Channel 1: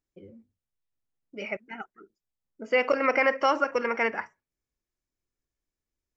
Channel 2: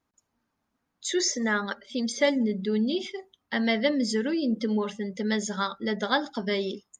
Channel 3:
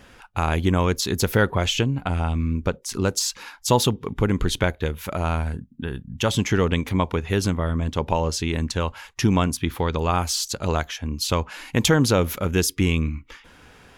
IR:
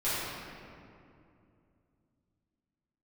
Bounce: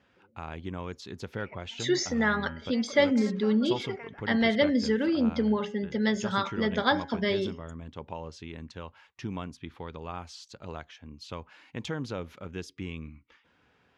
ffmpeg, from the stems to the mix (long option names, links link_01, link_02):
-filter_complex "[0:a]acompressor=threshold=-23dB:ratio=6,volume=-17.5dB[link_01];[1:a]bandreject=frequency=138.2:width_type=h:width=4,bandreject=frequency=276.4:width_type=h:width=4,bandreject=frequency=414.6:width_type=h:width=4,bandreject=frequency=552.8:width_type=h:width=4,bandreject=frequency=691:width_type=h:width=4,bandreject=frequency=829.2:width_type=h:width=4,bandreject=frequency=967.4:width_type=h:width=4,bandreject=frequency=1105.6:width_type=h:width=4,bandreject=frequency=1243.8:width_type=h:width=4,bandreject=frequency=1382:width_type=h:width=4,bandreject=frequency=1520.2:width_type=h:width=4,bandreject=frequency=1658.4:width_type=h:width=4,bandreject=frequency=1796.6:width_type=h:width=4,bandreject=frequency=1934.8:width_type=h:width=4,bandreject=frequency=2073:width_type=h:width=4,bandreject=frequency=2211.2:width_type=h:width=4,bandreject=frequency=2349.4:width_type=h:width=4,bandreject=frequency=2487.6:width_type=h:width=4,bandreject=frequency=2625.8:width_type=h:width=4,bandreject=frequency=2764:width_type=h:width=4,bandreject=frequency=2902.2:width_type=h:width=4,bandreject=frequency=3040.4:width_type=h:width=4,bandreject=frequency=3178.6:width_type=h:width=4,adelay=750,volume=1dB[link_02];[2:a]highpass=88,volume=-16dB[link_03];[link_01][link_02][link_03]amix=inputs=3:normalize=0,lowpass=4200"